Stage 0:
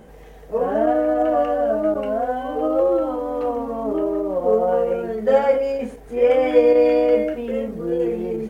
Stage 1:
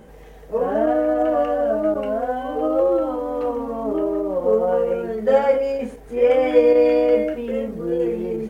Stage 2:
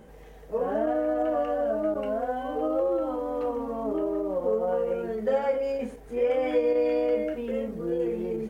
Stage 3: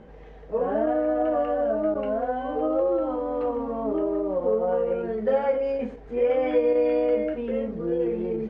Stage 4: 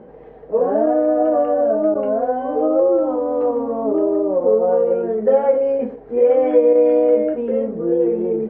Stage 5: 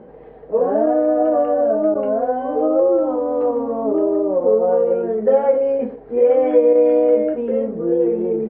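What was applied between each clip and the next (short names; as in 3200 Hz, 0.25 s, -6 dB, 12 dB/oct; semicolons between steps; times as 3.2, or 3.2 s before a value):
notch 710 Hz, Q 23
compressor 2:1, threshold -19 dBFS, peak gain reduction 6 dB; gain -5 dB
air absorption 200 m; gain +3 dB
band-pass 440 Hz, Q 0.73; gain +8.5 dB
downsampling 11025 Hz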